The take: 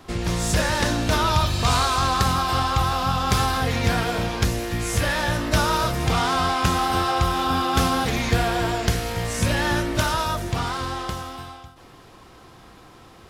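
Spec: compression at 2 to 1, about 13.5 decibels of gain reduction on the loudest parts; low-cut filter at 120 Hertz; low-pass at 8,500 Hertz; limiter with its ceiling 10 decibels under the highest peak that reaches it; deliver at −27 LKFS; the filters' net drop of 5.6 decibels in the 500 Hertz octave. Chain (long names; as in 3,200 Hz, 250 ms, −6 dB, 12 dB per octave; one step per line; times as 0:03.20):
high-pass filter 120 Hz
low-pass filter 8,500 Hz
parametric band 500 Hz −8 dB
downward compressor 2 to 1, threshold −45 dBFS
level +11.5 dB
brickwall limiter −18 dBFS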